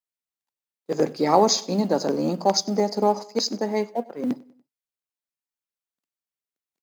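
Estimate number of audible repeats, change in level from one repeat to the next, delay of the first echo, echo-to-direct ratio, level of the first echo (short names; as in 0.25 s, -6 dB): 2, -6.5 dB, 96 ms, -21.5 dB, -22.5 dB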